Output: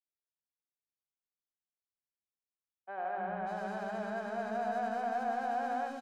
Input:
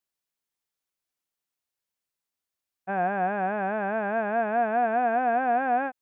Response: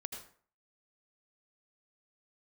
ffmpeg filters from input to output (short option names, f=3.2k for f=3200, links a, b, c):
-filter_complex "[0:a]adynamicsmooth=sensitivity=7.5:basefreq=910,acrossover=split=330|2600[a][b][c];[a]adelay=300[d];[c]adelay=580[e];[d][b][e]amix=inputs=3:normalize=0[f];[1:a]atrim=start_sample=2205[g];[f][g]afir=irnorm=-1:irlink=0,volume=-8.5dB"